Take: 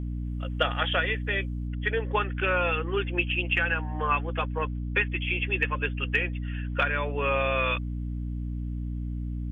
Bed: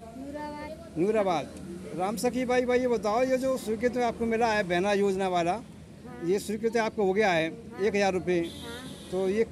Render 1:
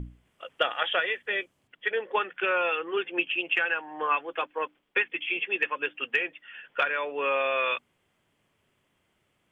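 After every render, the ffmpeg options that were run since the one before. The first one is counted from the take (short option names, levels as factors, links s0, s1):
-af "bandreject=f=60:t=h:w=6,bandreject=f=120:t=h:w=6,bandreject=f=180:t=h:w=6,bandreject=f=240:t=h:w=6,bandreject=f=300:t=h:w=6"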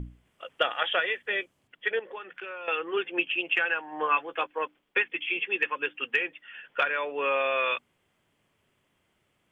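-filter_complex "[0:a]asettb=1/sr,asplit=3[s0][s1][s2];[s0]atrim=end=1.994[s3];[s1]atrim=start=1.99:end=2.68,asetpts=PTS-STARTPTS,afade=t=in:d=0.004:c=qsin,afade=t=out:st=0.686:d=0.004:c=qsin,acompressor=threshold=0.0126:ratio=4:attack=3.2:release=140:knee=1:detection=peak[s4];[s2]atrim=start=2.676[s5];[s3][s4]acrossfade=d=0.004:c1=hsin:c2=qsin[s6];[s6][s5]acrossfade=d=0.004:c1=qsin:c2=hsin,asettb=1/sr,asplit=3[s7][s8][s9];[s7]atrim=end=3.914[s10];[s8]atrim=start=3.91:end=4.47,asetpts=PTS-STARTPTS,afade=t=in:d=0.004:c=qsin,afade=t=out:st=0.556:d=0.004:c=qsin,asplit=2[s11][s12];[s12]adelay=13,volume=0.398[s13];[s11][s13]amix=inputs=2:normalize=0,atrim=end_sample=24696[s14];[s9]atrim=start=4.466[s15];[s10][s14]acrossfade=d=0.004:c1=hsin:c2=qsin[s16];[s16][s15]acrossfade=d=0.004:c1=qsin:c2=hsin,asettb=1/sr,asplit=3[s17][s18][s19];[s17]atrim=end=5.184[s20];[s18]atrim=start=5.18:end=6.33,asetpts=PTS-STARTPTS,afade=t=in:d=0.004:c=qsin,afade=t=out:st=1.146:d=0.004:c=qsin,bandreject=f=640:w=5.1[s21];[s19]atrim=start=6.326[s22];[s20][s21]acrossfade=d=0.004:c1=hsin:c2=qsin[s23];[s23][s22]acrossfade=d=0.004:c1=qsin:c2=hsin"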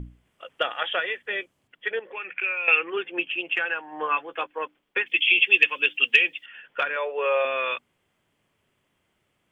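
-filter_complex "[0:a]asettb=1/sr,asplit=3[s0][s1][s2];[s0]atrim=end=2.124[s3];[s1]atrim=start=2.12:end=2.9,asetpts=PTS-STARTPTS,afade=t=in:d=0.004:c=qsin,afade=t=out:st=0.776:d=0.004:c=qsin,lowpass=f=2400:t=q:w=14[s4];[s2]atrim=start=2.896[s5];[s3][s4]acrossfade=d=0.004:c1=hsin:c2=qsin[s6];[s6][s5]acrossfade=d=0.004:c1=qsin:c2=hsin,asettb=1/sr,asplit=3[s7][s8][s9];[s7]atrim=end=5.064[s10];[s8]atrim=start=5.06:end=6.46,asetpts=PTS-STARTPTS,afade=t=in:d=0.004:c=qsin,afade=t=out:st=1.396:d=0.004:c=qsin,highshelf=f=2100:t=q:w=1.5:g=11.5[s11];[s9]atrim=start=6.456[s12];[s10][s11]acrossfade=d=0.004:c1=hsin:c2=qsin[s13];[s13][s12]acrossfade=d=0.004:c1=qsin:c2=hsin,asettb=1/sr,asplit=3[s14][s15][s16];[s14]atrim=end=6.964[s17];[s15]atrim=start=6.96:end=7.45,asetpts=PTS-STARTPTS,afade=t=in:d=0.004:c=qsin,afade=t=out:st=0.486:d=0.004:c=qsin,lowshelf=f=360:t=q:w=3:g=-9[s18];[s16]atrim=start=7.446[s19];[s17][s18]acrossfade=d=0.004:c1=hsin:c2=qsin[s20];[s20][s19]acrossfade=d=0.004:c1=qsin:c2=hsin"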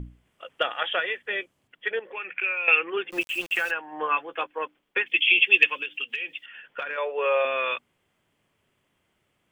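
-filter_complex "[0:a]asplit=3[s0][s1][s2];[s0]afade=t=out:st=3.1:d=0.02[s3];[s1]aeval=exprs='val(0)*gte(abs(val(0)),0.015)':c=same,afade=t=in:st=3.1:d=0.02,afade=t=out:st=3.7:d=0.02[s4];[s2]afade=t=in:st=3.7:d=0.02[s5];[s3][s4][s5]amix=inputs=3:normalize=0,asettb=1/sr,asplit=3[s6][s7][s8];[s6]atrim=end=5.744[s9];[s7]atrim=start=5.74:end=6.98,asetpts=PTS-STARTPTS,afade=t=in:d=0.004:c=qsin,afade=t=out:st=1.236:d=0.004:c=qsin,acompressor=threshold=0.0447:ratio=8:attack=3.2:release=140:knee=1:detection=peak[s10];[s8]atrim=start=6.976[s11];[s9][s10]acrossfade=d=0.004:c1=hsin:c2=qsin[s12];[s12][s11]acrossfade=d=0.004:c1=qsin:c2=hsin"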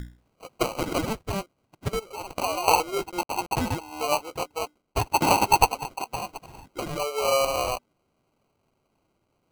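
-af "acrusher=samples=25:mix=1:aa=0.000001"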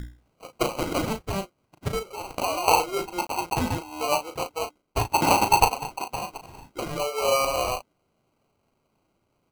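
-filter_complex "[0:a]asplit=2[s0][s1];[s1]adelay=36,volume=0.398[s2];[s0][s2]amix=inputs=2:normalize=0"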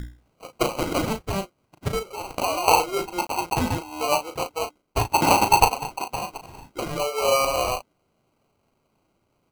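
-af "volume=1.26"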